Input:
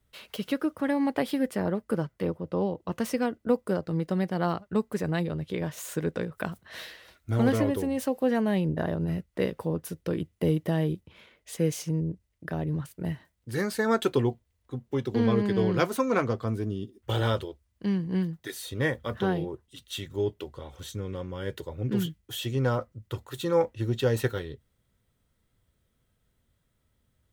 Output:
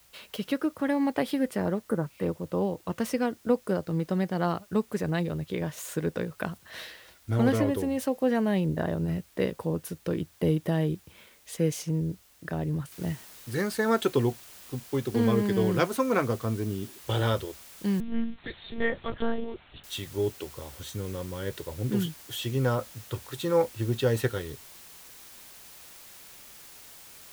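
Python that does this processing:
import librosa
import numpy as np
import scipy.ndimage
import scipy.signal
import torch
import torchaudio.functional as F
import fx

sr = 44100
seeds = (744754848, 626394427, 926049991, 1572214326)

y = fx.spec_repair(x, sr, seeds[0], start_s=1.89, length_s=0.32, low_hz=2100.0, high_hz=7800.0, source='both')
y = fx.noise_floor_step(y, sr, seeds[1], at_s=12.92, before_db=-60, after_db=-49, tilt_db=0.0)
y = fx.lpc_monotone(y, sr, seeds[2], pitch_hz=230.0, order=10, at=(18.0, 19.84))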